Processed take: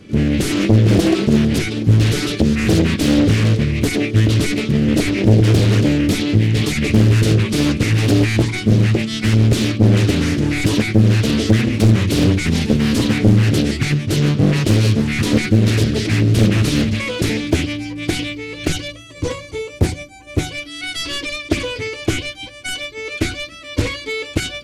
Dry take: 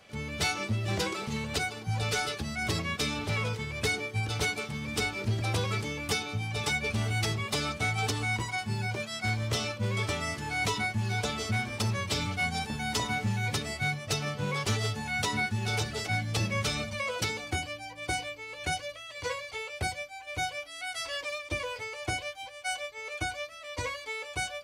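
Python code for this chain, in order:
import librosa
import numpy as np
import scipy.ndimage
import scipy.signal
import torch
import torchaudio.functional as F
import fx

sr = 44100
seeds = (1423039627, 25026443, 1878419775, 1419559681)

p1 = fx.rider(x, sr, range_db=3, speed_s=2.0)
p2 = x + (p1 * 10.0 ** (1.0 / 20.0))
p3 = fx.spec_box(p2, sr, start_s=18.92, length_s=1.59, low_hz=1200.0, high_hz=5700.0, gain_db=-6)
p4 = fx.dynamic_eq(p3, sr, hz=3500.0, q=1.0, threshold_db=-41.0, ratio=4.0, max_db=8)
p5 = 10.0 ** (-18.5 / 20.0) * (np.abs((p4 / 10.0 ** (-18.5 / 20.0) + 3.0) % 4.0 - 2.0) - 1.0)
p6 = fx.brickwall_lowpass(p5, sr, high_hz=12000.0)
p7 = fx.low_shelf_res(p6, sr, hz=470.0, db=13.5, q=3.0)
y = fx.doppler_dist(p7, sr, depth_ms=0.96)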